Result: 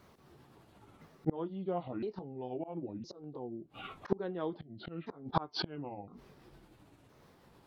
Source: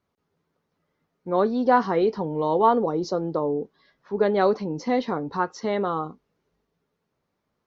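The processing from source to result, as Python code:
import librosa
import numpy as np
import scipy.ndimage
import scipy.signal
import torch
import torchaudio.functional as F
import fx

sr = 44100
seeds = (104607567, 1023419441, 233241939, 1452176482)

y = fx.pitch_ramps(x, sr, semitones=-8.0, every_ms=1013)
y = fx.gate_flip(y, sr, shuts_db=-23.0, range_db=-33)
y = fx.auto_swell(y, sr, attack_ms=154.0)
y = F.gain(torch.from_numpy(y), 17.0).numpy()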